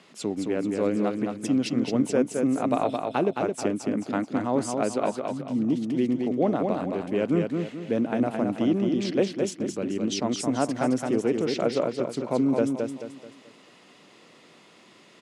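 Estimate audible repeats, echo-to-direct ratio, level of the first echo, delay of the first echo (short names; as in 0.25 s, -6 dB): 4, -4.0 dB, -4.5 dB, 0.217 s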